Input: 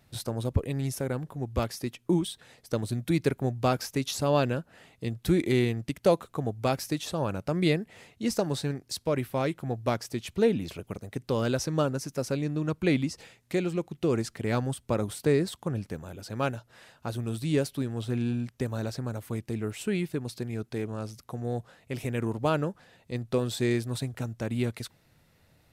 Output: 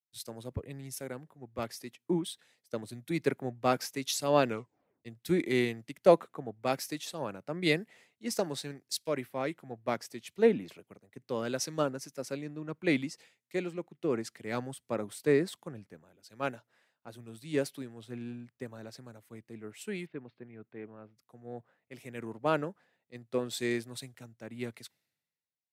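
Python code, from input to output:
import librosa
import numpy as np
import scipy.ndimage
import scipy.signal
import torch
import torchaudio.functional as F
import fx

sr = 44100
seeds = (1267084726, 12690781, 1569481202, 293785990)

y = fx.lowpass(x, sr, hz=3000.0, slope=24, at=(20.05, 21.16), fade=0.02)
y = fx.edit(y, sr, fx.tape_stop(start_s=4.47, length_s=0.58), tone=tone)
y = scipy.signal.sosfilt(scipy.signal.butter(2, 190.0, 'highpass', fs=sr, output='sos'), y)
y = fx.peak_eq(y, sr, hz=2000.0, db=4.5, octaves=0.49)
y = fx.band_widen(y, sr, depth_pct=100)
y = y * librosa.db_to_amplitude(-6.0)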